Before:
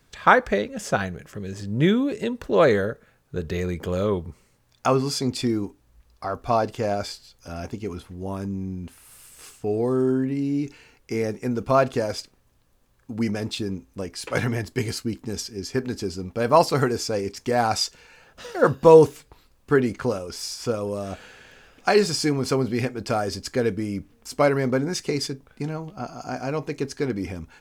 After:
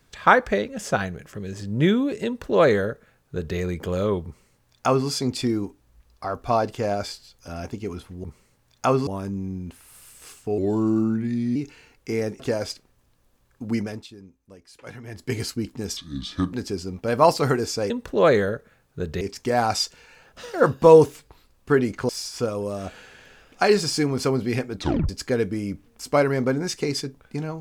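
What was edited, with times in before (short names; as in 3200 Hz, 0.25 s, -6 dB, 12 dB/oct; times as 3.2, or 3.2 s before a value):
2.26–3.57 copy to 17.22
4.25–5.08 copy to 8.24
9.75–10.58 speed 85%
11.42–11.88 cut
13.23–14.86 dip -16 dB, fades 0.34 s
15.45–15.85 speed 71%
20.1–20.35 cut
23.01 tape stop 0.34 s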